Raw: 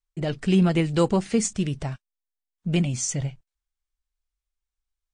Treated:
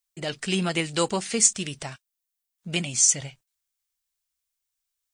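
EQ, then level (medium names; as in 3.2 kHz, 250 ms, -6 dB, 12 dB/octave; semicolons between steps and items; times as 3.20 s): tilt EQ +3.5 dB/octave; 0.0 dB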